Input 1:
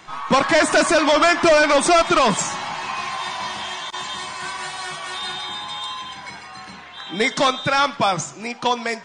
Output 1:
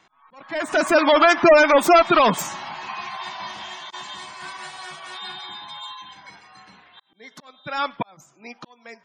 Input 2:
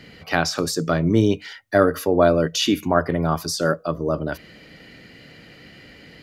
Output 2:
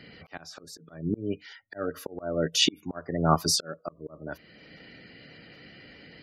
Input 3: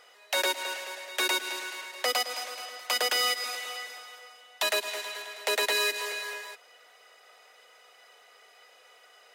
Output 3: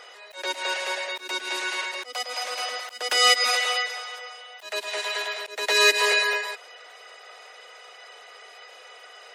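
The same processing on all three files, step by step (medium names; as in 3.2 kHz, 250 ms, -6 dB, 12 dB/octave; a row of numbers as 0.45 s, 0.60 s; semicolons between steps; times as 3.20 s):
self-modulated delay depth 0.056 ms; spectral gate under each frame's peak -25 dB strong; bass shelf 68 Hz -7.5 dB; slow attack 670 ms; upward expansion 1.5:1, over -43 dBFS; peak normalisation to -6 dBFS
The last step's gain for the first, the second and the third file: +2.5 dB, +6.0 dB, +16.5 dB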